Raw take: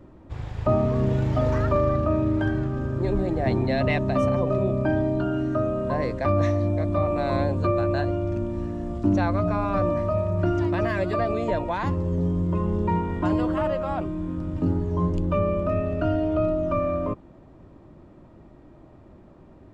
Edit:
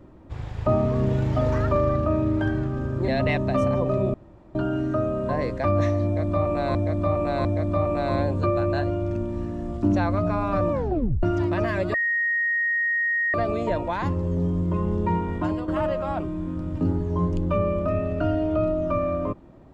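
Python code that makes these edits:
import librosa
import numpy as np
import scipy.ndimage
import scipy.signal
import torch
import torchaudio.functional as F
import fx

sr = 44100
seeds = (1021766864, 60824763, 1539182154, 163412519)

y = fx.edit(x, sr, fx.cut(start_s=3.08, length_s=0.61),
    fx.room_tone_fill(start_s=4.75, length_s=0.41),
    fx.repeat(start_s=6.66, length_s=0.7, count=3),
    fx.tape_stop(start_s=9.93, length_s=0.51),
    fx.insert_tone(at_s=11.15, length_s=1.4, hz=1870.0, db=-20.5),
    fx.fade_out_to(start_s=13.16, length_s=0.33, floor_db=-9.0), tone=tone)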